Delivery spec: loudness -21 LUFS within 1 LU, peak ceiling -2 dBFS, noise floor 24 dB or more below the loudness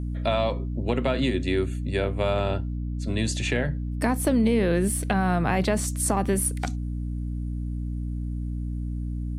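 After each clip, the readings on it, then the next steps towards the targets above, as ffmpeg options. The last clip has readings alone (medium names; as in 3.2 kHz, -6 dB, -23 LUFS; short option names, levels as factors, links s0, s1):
hum 60 Hz; highest harmonic 300 Hz; hum level -27 dBFS; loudness -26.5 LUFS; peak level -9.5 dBFS; loudness target -21.0 LUFS
-> -af "bandreject=f=60:t=h:w=6,bandreject=f=120:t=h:w=6,bandreject=f=180:t=h:w=6,bandreject=f=240:t=h:w=6,bandreject=f=300:t=h:w=6"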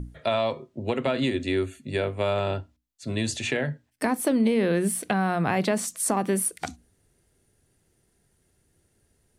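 hum not found; loudness -26.5 LUFS; peak level -9.5 dBFS; loudness target -21.0 LUFS
-> -af "volume=1.88"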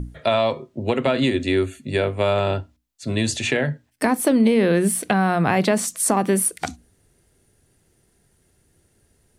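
loudness -21.0 LUFS; peak level -4.0 dBFS; noise floor -64 dBFS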